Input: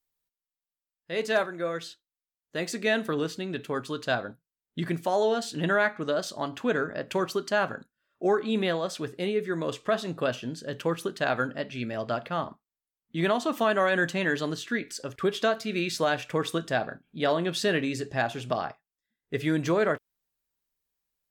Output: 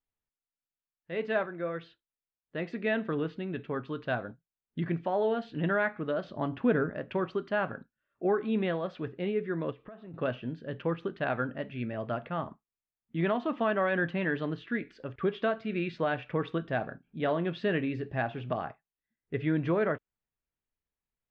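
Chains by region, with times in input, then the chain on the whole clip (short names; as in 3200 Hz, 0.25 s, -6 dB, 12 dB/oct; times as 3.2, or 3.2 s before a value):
6.24–6.9 LPF 8900 Hz + low shelf 460 Hz +6.5 dB
9.71–10.14 compressor 5:1, threshold -40 dBFS + tape spacing loss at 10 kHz 22 dB
whole clip: LPF 2900 Hz 24 dB/oct; low shelf 250 Hz +6.5 dB; gain -5 dB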